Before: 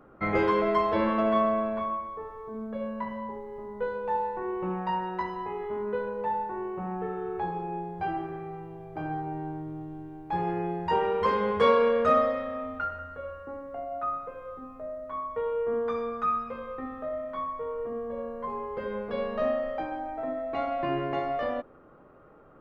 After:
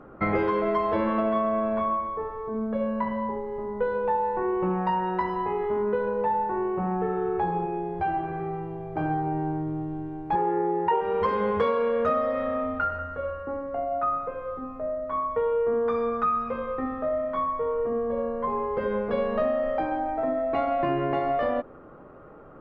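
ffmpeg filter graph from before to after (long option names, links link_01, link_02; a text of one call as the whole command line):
ffmpeg -i in.wav -filter_complex "[0:a]asettb=1/sr,asplit=3[link_01][link_02][link_03];[link_01]atrim=end=7.644[link_04];[link_02]atrim=start=7.64:end=8.4,asetpts=PTS-STARTPTS,afade=type=in:duration=0.004:curve=qsin,afade=type=out:start_time=0.756:duration=0.004:curve=qsin,acompressor=threshold=-34dB:ratio=2:attack=3.2:release=140:knee=1:detection=peak,asplit=2[link_05][link_06];[link_06]adelay=14,volume=-6.5dB[link_07];[link_05][link_07]amix=inputs=2:normalize=0,atrim=end_sample=33516[link_08];[link_03]atrim=start=8.396[link_09];[link_04][link_08]acrossfade=duration=0.004:curve1=hsin:curve2=qsin[link_10];[link_10][link_09]acrossfade=duration=0.004:curve1=qsin:curve2=hsin,asettb=1/sr,asplit=3[link_11][link_12][link_13];[link_11]atrim=end=10.354[link_14];[link_12]atrim=start=10.35:end=11.01,asetpts=PTS-STARTPTS,afade=type=in:duration=0.004:curve=qsin,afade=type=out:start_time=0.656:duration=0.004:curve=qsin,highpass=210,lowpass=2800,aecho=1:1:2.2:0.96,atrim=end_sample=29106[link_15];[link_13]atrim=start=11.006[link_16];[link_14][link_15]acrossfade=duration=0.004:curve1=hsin:curve2=qsin[link_17];[link_17][link_16]acrossfade=duration=0.004:curve1=qsin:curve2=hsin,lowpass=frequency=2200:poles=1,acompressor=threshold=-29dB:ratio=6,volume=7.5dB" out.wav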